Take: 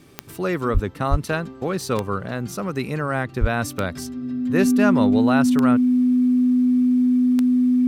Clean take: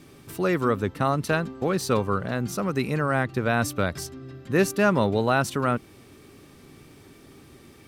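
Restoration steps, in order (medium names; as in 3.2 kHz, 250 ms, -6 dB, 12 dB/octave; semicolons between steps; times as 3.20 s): de-click; band-stop 250 Hz, Q 30; de-plosive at 0.73/1.10/3.40 s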